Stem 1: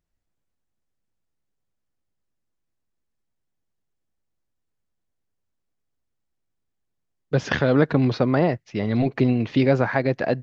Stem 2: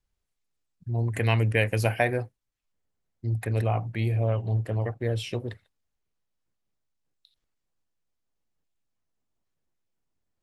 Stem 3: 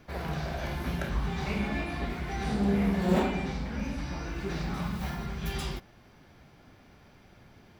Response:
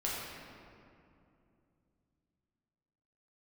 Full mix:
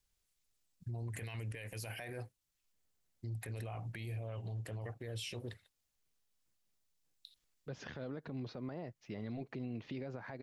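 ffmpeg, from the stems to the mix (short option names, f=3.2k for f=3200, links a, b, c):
-filter_complex "[0:a]adynamicequalizer=threshold=0.0158:dfrequency=1600:dqfactor=0.9:tfrequency=1600:tqfactor=0.9:attack=5:release=100:ratio=0.375:range=2.5:mode=cutabove:tftype=bell,alimiter=limit=-13.5dB:level=0:latency=1:release=94,adelay=350,volume=-12.5dB[a];[1:a]acompressor=threshold=-25dB:ratio=6,volume=-4dB,highshelf=f=2.4k:g=11.5,alimiter=level_in=4.5dB:limit=-24dB:level=0:latency=1:release=21,volume=-4.5dB,volume=0dB[b];[a][b]amix=inputs=2:normalize=0,alimiter=level_in=10.5dB:limit=-24dB:level=0:latency=1:release=293,volume=-10.5dB"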